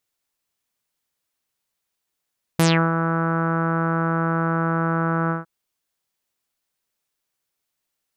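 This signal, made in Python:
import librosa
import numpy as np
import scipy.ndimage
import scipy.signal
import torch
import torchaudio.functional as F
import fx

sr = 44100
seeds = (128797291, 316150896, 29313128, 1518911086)

y = fx.sub_voice(sr, note=52, wave='saw', cutoff_hz=1400.0, q=4.7, env_oct=3.5, env_s=0.2, attack_ms=3.1, decay_s=0.32, sustain_db=-7.5, release_s=0.15, note_s=2.71, slope=24)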